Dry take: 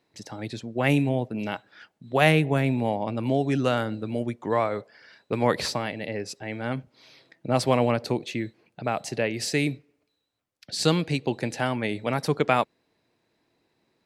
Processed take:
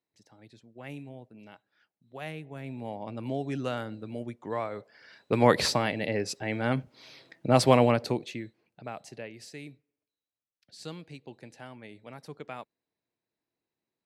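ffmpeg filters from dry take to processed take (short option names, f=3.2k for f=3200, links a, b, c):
-af "volume=2dB,afade=t=in:st=2.51:d=0.65:silence=0.266073,afade=t=in:st=4.75:d=0.68:silence=0.298538,afade=t=out:st=7.71:d=0.71:silence=0.281838,afade=t=out:st=8.42:d=1.11:silence=0.316228"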